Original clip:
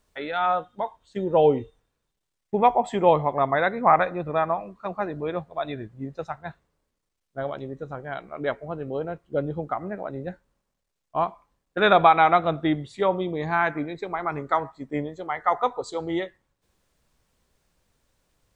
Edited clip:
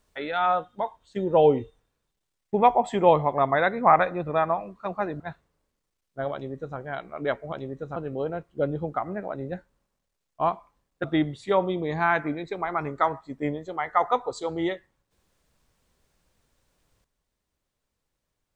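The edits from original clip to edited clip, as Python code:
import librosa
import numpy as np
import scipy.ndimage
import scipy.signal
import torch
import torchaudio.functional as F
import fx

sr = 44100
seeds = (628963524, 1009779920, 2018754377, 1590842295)

y = fx.edit(x, sr, fx.cut(start_s=5.2, length_s=1.19),
    fx.duplicate(start_s=7.52, length_s=0.44, to_s=8.71),
    fx.cut(start_s=11.79, length_s=0.76), tone=tone)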